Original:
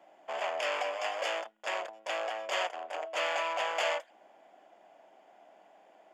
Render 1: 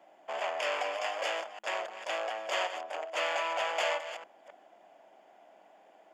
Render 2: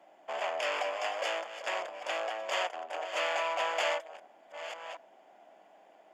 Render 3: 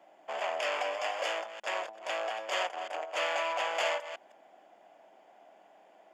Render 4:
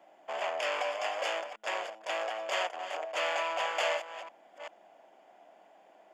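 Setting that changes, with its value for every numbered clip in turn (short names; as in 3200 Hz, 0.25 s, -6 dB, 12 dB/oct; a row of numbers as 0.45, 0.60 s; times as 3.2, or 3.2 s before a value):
reverse delay, time: 0.265, 0.71, 0.16, 0.39 s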